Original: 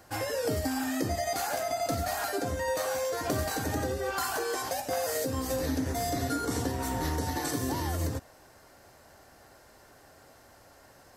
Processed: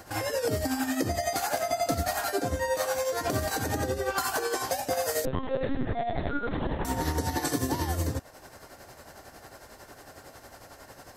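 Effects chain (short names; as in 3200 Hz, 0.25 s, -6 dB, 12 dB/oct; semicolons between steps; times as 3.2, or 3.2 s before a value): in parallel at +3 dB: compressor, threshold -42 dBFS, peak gain reduction 15.5 dB; on the sum: tremolo 11 Hz, depth 57%; 5.25–6.85 LPC vocoder at 8 kHz pitch kept; gain +2 dB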